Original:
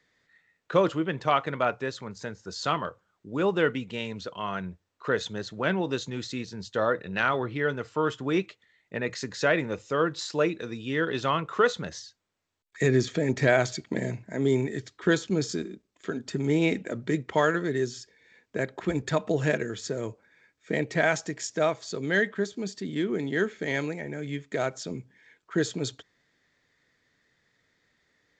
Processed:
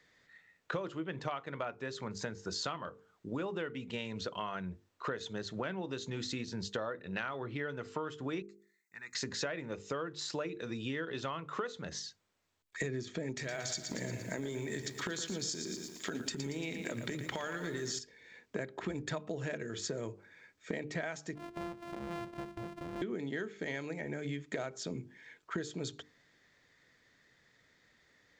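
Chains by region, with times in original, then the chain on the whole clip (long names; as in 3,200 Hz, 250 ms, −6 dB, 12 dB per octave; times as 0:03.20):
0:08.42–0:09.15: first-order pre-emphasis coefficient 0.97 + phaser with its sweep stopped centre 1,300 Hz, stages 4
0:13.32–0:17.99: downward compressor, threshold −31 dBFS + high-shelf EQ 2,600 Hz +10.5 dB + feedback echo at a low word length 115 ms, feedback 55%, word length 9 bits, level −9 dB
0:21.35–0:23.02: samples sorted by size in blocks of 128 samples + low-pass filter 1,300 Hz 6 dB per octave + downward compressor 2.5 to 1, threshold −45 dBFS
whole clip: mains-hum notches 50/100/150/200/250/300/350/400/450 Hz; downward compressor 12 to 1, threshold −37 dBFS; level +2.5 dB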